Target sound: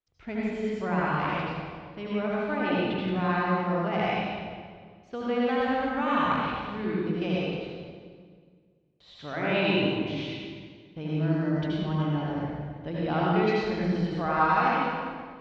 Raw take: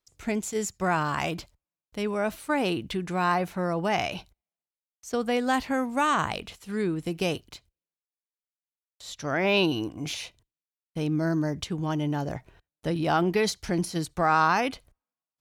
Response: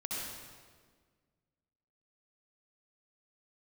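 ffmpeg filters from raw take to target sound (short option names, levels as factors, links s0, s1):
-filter_complex "[0:a]lowpass=f=3700:w=0.5412,lowpass=f=3700:w=1.3066[s0];[1:a]atrim=start_sample=2205,asetrate=37485,aresample=44100[s1];[s0][s1]afir=irnorm=-1:irlink=0,volume=0.596"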